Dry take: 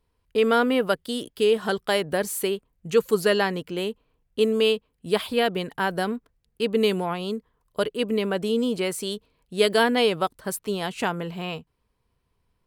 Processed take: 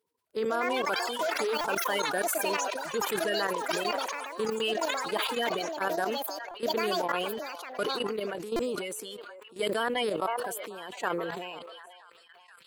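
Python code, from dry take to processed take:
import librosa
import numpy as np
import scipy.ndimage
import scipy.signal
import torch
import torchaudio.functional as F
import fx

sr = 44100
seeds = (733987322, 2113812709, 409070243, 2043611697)

p1 = fx.spec_quant(x, sr, step_db=30)
p2 = scipy.signal.sosfilt(scipy.signal.butter(2, 350.0, 'highpass', fs=sr, output='sos'), p1)
p3 = fx.high_shelf(p2, sr, hz=11000.0, db=4.0)
p4 = p3 + fx.echo_stepped(p3, sr, ms=486, hz=790.0, octaves=0.7, feedback_pct=70, wet_db=-10.5, dry=0)
p5 = fx.echo_pitch(p4, sr, ms=269, semitones=7, count=3, db_per_echo=-3.0)
p6 = fx.high_shelf(p5, sr, hz=2300.0, db=-4.0)
p7 = fx.level_steps(p6, sr, step_db=13)
p8 = fx.buffer_glitch(p7, sr, at_s=(1.61, 6.51, 8.56), block=128, repeats=10)
p9 = fx.sustainer(p8, sr, db_per_s=28.0)
y = p9 * librosa.db_to_amplitude(-2.5)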